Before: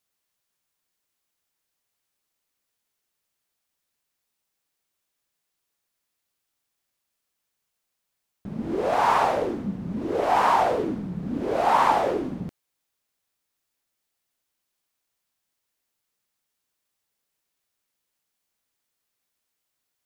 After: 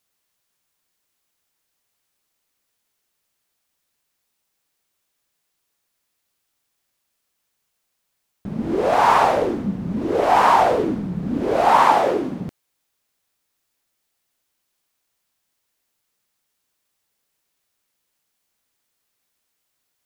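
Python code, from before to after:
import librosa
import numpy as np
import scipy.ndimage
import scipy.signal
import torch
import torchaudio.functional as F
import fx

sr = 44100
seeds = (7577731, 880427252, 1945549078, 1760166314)

y = fx.highpass(x, sr, hz=150.0, slope=6, at=(11.82, 12.48))
y = y * librosa.db_to_amplitude(5.5)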